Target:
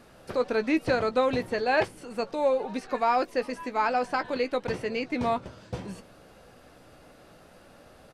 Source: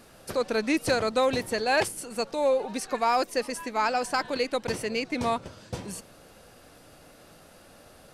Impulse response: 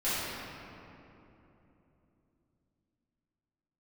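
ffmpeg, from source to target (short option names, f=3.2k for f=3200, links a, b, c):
-filter_complex "[0:a]acrossover=split=4600[a][b];[b]acompressor=threshold=-46dB:ratio=4:attack=1:release=60[c];[a][c]amix=inputs=2:normalize=0,highshelf=f=4.5k:g=-9.5,asplit=2[d][e];[e]adelay=16,volume=-11dB[f];[d][f]amix=inputs=2:normalize=0"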